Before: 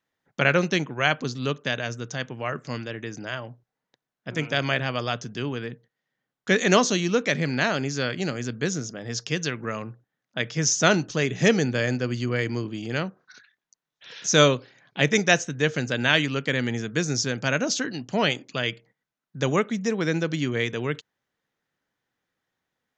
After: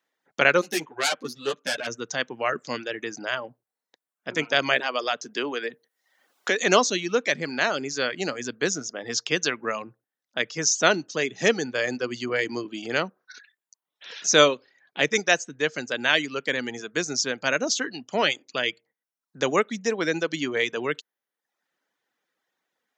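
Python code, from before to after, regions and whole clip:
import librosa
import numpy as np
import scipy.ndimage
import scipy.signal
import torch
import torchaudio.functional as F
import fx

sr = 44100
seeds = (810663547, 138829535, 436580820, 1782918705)

y = fx.chain(x, sr, fx.self_delay(depth_ms=0.27),
    fx.ensemble(), at=(0.61, 1.87))
y = fx.chain(y, sr, fx.highpass(hz=270.0, slope=12),
    fx.band_squash(depth_pct=70), at=(4.8, 6.6))
y = fx.dereverb_blind(y, sr, rt60_s=0.66)
y = scipy.signal.sosfilt(scipy.signal.butter(2, 310.0, 'highpass', fs=sr, output='sos'), y)
y = fx.rider(y, sr, range_db=4, speed_s=2.0)
y = F.gain(torch.from_numpy(y), 1.0).numpy()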